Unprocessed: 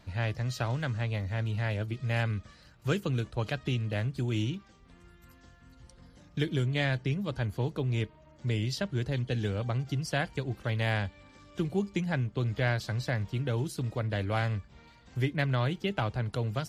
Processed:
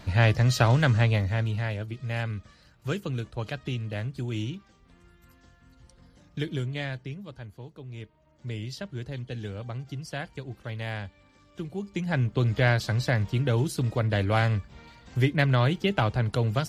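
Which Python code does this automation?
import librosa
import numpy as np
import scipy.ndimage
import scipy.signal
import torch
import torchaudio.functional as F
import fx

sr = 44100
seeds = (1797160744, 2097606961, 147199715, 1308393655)

y = fx.gain(x, sr, db=fx.line((0.99, 10.5), (1.82, -1.0), (6.55, -1.0), (7.71, -13.0), (8.48, -4.5), (11.79, -4.5), (12.24, 6.0)))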